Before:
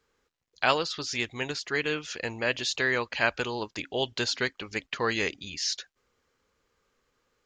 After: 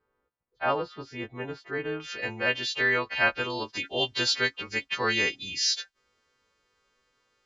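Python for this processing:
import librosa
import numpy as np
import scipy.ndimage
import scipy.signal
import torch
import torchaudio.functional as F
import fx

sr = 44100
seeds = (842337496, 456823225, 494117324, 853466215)

y = fx.freq_snap(x, sr, grid_st=2)
y = fx.lowpass(y, sr, hz=fx.steps((0.0, 1100.0), (2.0, 2800.0), (3.5, 4800.0)), slope=12)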